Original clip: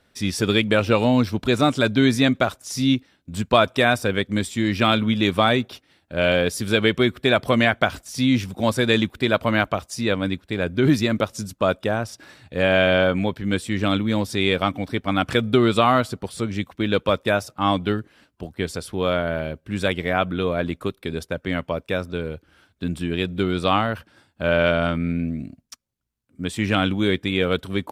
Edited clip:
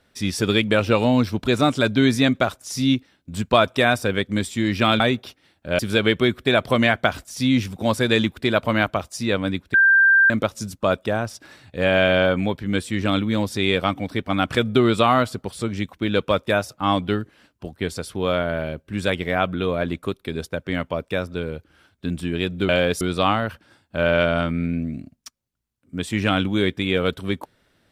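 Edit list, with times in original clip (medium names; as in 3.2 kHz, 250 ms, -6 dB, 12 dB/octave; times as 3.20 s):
5.00–5.46 s: delete
6.25–6.57 s: move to 23.47 s
10.52–11.08 s: bleep 1.58 kHz -11 dBFS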